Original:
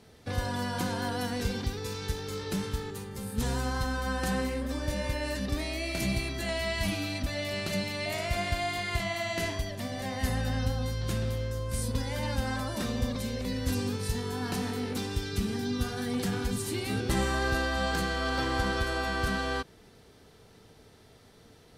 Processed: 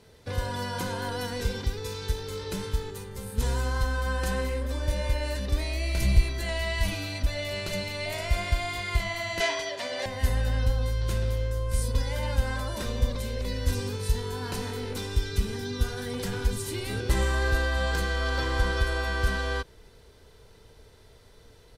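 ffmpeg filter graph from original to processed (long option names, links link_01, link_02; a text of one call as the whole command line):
ffmpeg -i in.wav -filter_complex "[0:a]asettb=1/sr,asplit=3[link_01][link_02][link_03];[link_01]atrim=end=5.664[link_04];[link_02]atrim=start=5.66:end=6.22,asetpts=PTS-STARTPTS,afade=type=in:duration=0.004:curve=qsin,afade=type=out:start_time=0.556:duration=0.004:curve=qsin,asubboost=boost=9.5:cutoff=210,volume=16.5dB,asoftclip=hard,volume=-16.5dB[link_05];[link_03]atrim=start=6.216[link_06];[link_04][link_05]acrossfade=duration=0.004:curve1=hsin:curve2=qsin[link_07];[link_07][link_06]acrossfade=duration=0.004:curve1=qsin:curve2=hsin,asettb=1/sr,asplit=3[link_08][link_09][link_10];[link_08]atrim=end=9.404[link_11];[link_09]atrim=start=9.4:end=10.06,asetpts=PTS-STARTPTS,afade=type=in:duration=0.004:curve=qsin,afade=type=out:start_time=0.656:duration=0.004:curve=qsin,acontrast=82,highpass=500,lowpass=6000,aecho=1:1:7.3:0.5,atrim=end_sample=29106[link_12];[link_10]atrim=start=10.056[link_13];[link_11][link_12]acrossfade=duration=0.004:curve1=hsin:curve2=qsin[link_14];[link_14][link_13]acrossfade=duration=0.004:curve1=qsin:curve2=hsin,asubboost=boost=3:cutoff=69,aecho=1:1:2:0.36" out.wav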